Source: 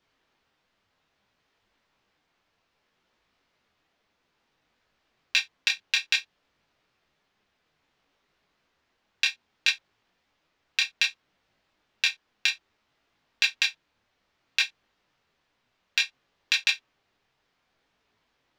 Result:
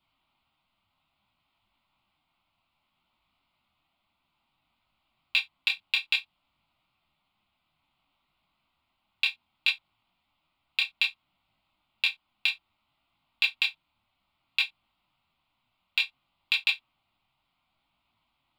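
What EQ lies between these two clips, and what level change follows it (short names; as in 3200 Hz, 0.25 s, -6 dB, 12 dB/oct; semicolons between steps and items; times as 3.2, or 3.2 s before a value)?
fixed phaser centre 1700 Hz, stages 6; 0.0 dB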